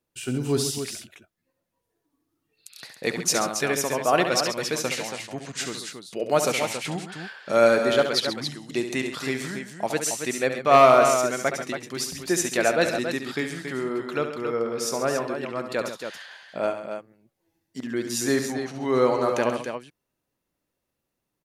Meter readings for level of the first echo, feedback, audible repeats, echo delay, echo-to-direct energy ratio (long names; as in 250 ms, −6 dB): −8.5 dB, repeats not evenly spaced, 3, 69 ms, −4.0 dB